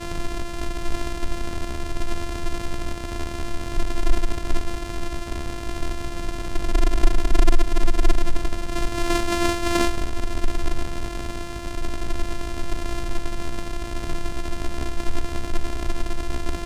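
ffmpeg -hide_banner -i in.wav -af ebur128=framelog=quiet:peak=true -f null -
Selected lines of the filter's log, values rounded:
Integrated loudness:
  I:         -28.8 LUFS
  Threshold: -38.8 LUFS
Loudness range:
  LRA:         6.7 LU
  Threshold: -48.5 LUFS
  LRA low:   -31.7 LUFS
  LRA high:  -25.0 LUFS
True peak:
  Peak:       -2.8 dBFS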